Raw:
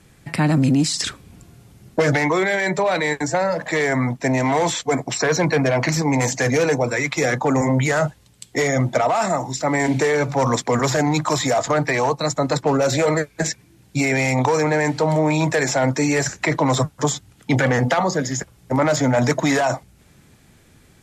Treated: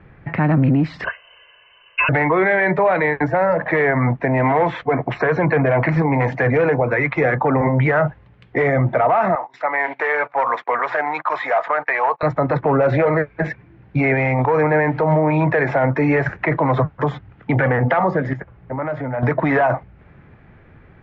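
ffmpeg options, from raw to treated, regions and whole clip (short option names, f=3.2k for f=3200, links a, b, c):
-filter_complex "[0:a]asettb=1/sr,asplit=3[a][b][c];[a]atrim=end=1.044[d];[b]atrim=start=1.04:end=2.09,asetpts=PTS-STARTPTS,afade=t=in:d=0.004:c=qsin,afade=t=out:st=1.046:d=0.004:c=qsin,lowpass=f=2.6k:t=q:w=0.5098,lowpass=f=2.6k:t=q:w=0.6013,lowpass=f=2.6k:t=q:w=0.9,lowpass=f=2.6k:t=q:w=2.563,afreqshift=-3100,aecho=1:1:1.9:0.85,atrim=end_sample=46305[e];[c]atrim=start=2.086[f];[d][e]acrossfade=d=0.004:c1=hsin:c2=qsin[g];[g][f]acrossfade=d=0.004:c1=qsin:c2=hsin,asettb=1/sr,asplit=3[h][i][j];[h]atrim=end=9.354[k];[i]atrim=start=9.35:end=12.23,asetpts=PTS-STARTPTS,afade=t=in:d=0.004:c=qsin,afade=t=out:st=2.876:d=0.004:c=qsin,highpass=820,agate=range=-18dB:threshold=-35dB:ratio=16:release=100:detection=peak[l];[j]atrim=start=12.226[m];[k][l]acrossfade=d=0.004:c1=hsin:c2=qsin[n];[n][m]acrossfade=d=0.004:c1=qsin:c2=hsin,asettb=1/sr,asplit=3[o][p][q];[o]atrim=end=18.334[r];[p]atrim=start=18.33:end=19.23,asetpts=PTS-STARTPTS,afade=t=in:d=0.004:c=qsin,afade=t=out:st=0.896:d=0.004:c=qsin,highshelf=f=5.2k:g=-8.5,acompressor=threshold=-37dB:ratio=2:attack=3.2:release=140:knee=1:detection=peak[s];[q]atrim=start=19.226[t];[r][s]acrossfade=d=0.004:c1=hsin:c2=qsin[u];[u][t]acrossfade=d=0.004:c1=qsin:c2=hsin,lowpass=f=2.1k:w=0.5412,lowpass=f=2.1k:w=1.3066,equalizer=f=250:t=o:w=0.9:g=-4.5,alimiter=limit=-15.5dB:level=0:latency=1:release=90,volume=7dB"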